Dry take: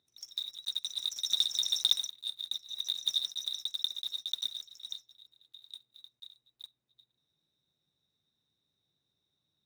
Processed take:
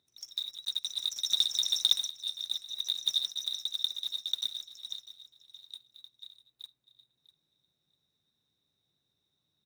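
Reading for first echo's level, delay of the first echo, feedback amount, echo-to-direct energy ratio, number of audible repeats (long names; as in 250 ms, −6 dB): −16.5 dB, 648 ms, 19%, −16.5 dB, 2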